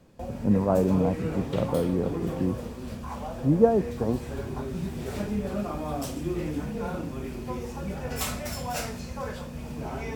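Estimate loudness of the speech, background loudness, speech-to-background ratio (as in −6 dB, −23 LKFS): −26.5 LKFS, −33.5 LKFS, 7.0 dB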